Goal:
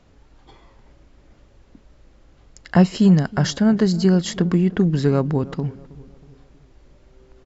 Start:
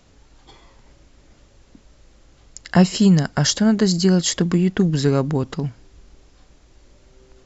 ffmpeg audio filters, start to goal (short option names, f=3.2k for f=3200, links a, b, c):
-filter_complex "[0:a]lowpass=f=2.2k:p=1,asplit=2[a][b];[b]adelay=319,lowpass=f=1.1k:p=1,volume=-19dB,asplit=2[c][d];[d]adelay=319,lowpass=f=1.1k:p=1,volume=0.48,asplit=2[e][f];[f]adelay=319,lowpass=f=1.1k:p=1,volume=0.48,asplit=2[g][h];[h]adelay=319,lowpass=f=1.1k:p=1,volume=0.48[i];[c][e][g][i]amix=inputs=4:normalize=0[j];[a][j]amix=inputs=2:normalize=0"